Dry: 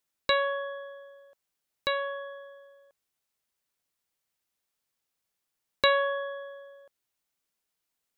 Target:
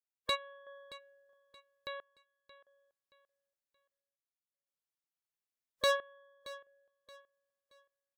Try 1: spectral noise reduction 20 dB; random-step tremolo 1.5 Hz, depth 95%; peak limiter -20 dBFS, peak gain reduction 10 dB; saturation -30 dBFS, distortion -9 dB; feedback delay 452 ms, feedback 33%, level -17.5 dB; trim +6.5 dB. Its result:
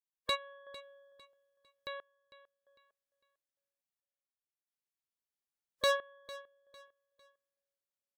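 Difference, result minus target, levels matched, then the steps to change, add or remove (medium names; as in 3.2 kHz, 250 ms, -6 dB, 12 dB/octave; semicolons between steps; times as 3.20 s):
echo 173 ms early
change: feedback delay 625 ms, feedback 33%, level -17.5 dB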